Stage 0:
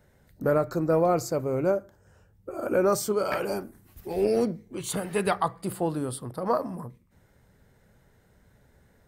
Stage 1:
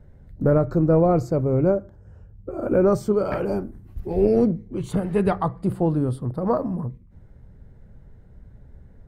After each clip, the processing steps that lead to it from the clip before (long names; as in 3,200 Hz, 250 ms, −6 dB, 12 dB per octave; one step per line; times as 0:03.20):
spectral tilt −4 dB per octave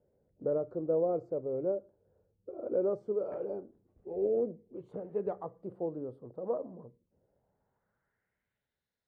band-pass filter sweep 490 Hz → 4,300 Hz, 0:07.17–0:08.89
level −8.5 dB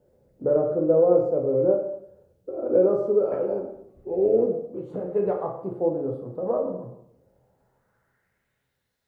dense smooth reverb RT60 0.7 s, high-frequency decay 0.8×, DRR 0 dB
level +8.5 dB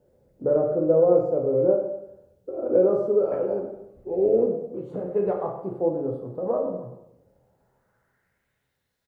repeating echo 95 ms, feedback 49%, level −14.5 dB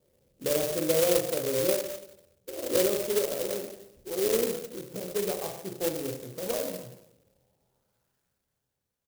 converter with an unsteady clock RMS 0.15 ms
level −6 dB